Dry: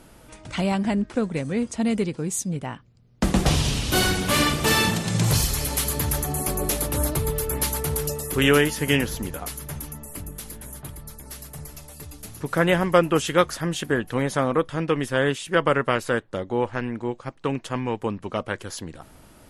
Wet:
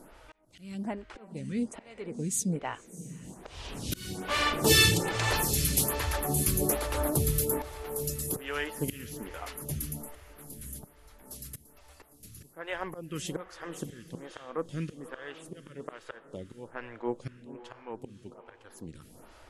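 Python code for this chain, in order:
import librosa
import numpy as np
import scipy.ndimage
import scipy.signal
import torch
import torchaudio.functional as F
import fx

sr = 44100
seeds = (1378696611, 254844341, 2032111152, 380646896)

p1 = fx.comb(x, sr, ms=2.3, depth=0.83, at=(4.69, 5.12))
p2 = fx.auto_swell(p1, sr, attack_ms=753.0)
p3 = p2 + fx.echo_diffused(p2, sr, ms=549, feedback_pct=43, wet_db=-13, dry=0)
y = fx.stagger_phaser(p3, sr, hz=1.2)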